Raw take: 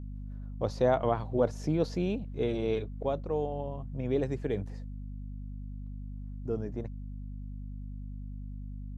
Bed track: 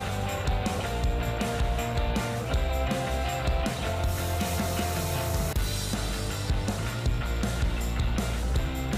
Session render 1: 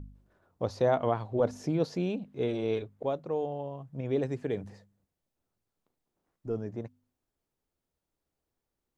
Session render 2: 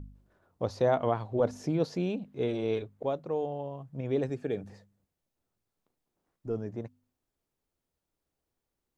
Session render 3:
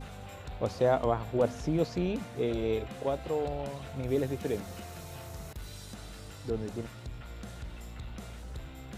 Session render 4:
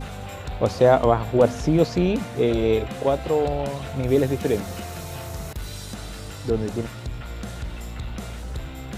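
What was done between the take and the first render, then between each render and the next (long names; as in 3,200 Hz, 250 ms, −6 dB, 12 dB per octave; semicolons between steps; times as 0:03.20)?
hum removal 50 Hz, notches 5
0:04.29–0:04.70: notch comb filter 1,000 Hz
mix in bed track −15 dB
level +10 dB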